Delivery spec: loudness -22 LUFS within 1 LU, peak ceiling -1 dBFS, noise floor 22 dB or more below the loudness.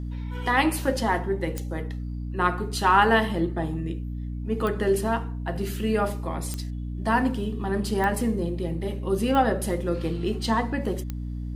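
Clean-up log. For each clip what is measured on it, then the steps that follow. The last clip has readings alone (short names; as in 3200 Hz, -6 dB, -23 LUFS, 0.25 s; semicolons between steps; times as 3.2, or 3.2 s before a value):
clicks 6; hum 60 Hz; harmonics up to 300 Hz; hum level -29 dBFS; loudness -26.0 LUFS; peak -6.0 dBFS; loudness target -22.0 LUFS
-> de-click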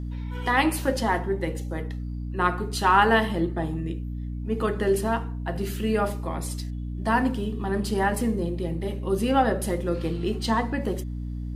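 clicks 0; hum 60 Hz; harmonics up to 300 Hz; hum level -29 dBFS
-> notches 60/120/180/240/300 Hz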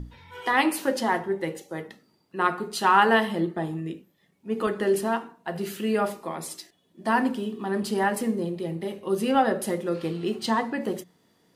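hum none; loudness -26.0 LUFS; peak -6.0 dBFS; loudness target -22.0 LUFS
-> gain +4 dB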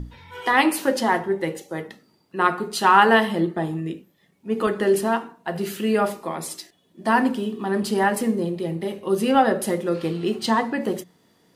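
loudness -22.0 LUFS; peak -2.5 dBFS; noise floor -63 dBFS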